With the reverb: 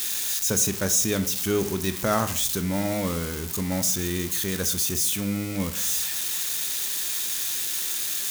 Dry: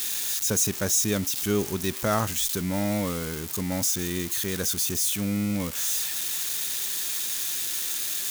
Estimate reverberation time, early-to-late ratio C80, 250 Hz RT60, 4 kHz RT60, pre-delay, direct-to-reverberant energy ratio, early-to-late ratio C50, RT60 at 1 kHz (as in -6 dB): 0.60 s, 17.5 dB, 0.75 s, 0.40 s, 18 ms, 10.0 dB, 13.5 dB, 0.55 s